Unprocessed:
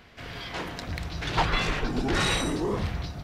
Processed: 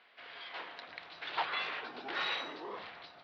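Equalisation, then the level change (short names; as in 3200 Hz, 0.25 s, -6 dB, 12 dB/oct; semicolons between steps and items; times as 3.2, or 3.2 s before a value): HPF 660 Hz 12 dB/oct; steep low-pass 4300 Hz 36 dB/oct; -7.5 dB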